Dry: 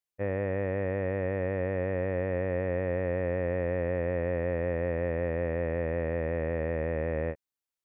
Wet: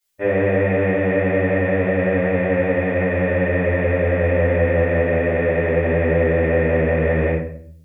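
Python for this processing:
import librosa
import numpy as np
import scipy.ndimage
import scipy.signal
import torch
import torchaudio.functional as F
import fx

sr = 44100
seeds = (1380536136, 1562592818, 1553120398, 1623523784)

y = fx.high_shelf(x, sr, hz=2300.0, db=11.0)
y = fx.room_shoebox(y, sr, seeds[0], volume_m3=83.0, walls='mixed', distance_m=2.6)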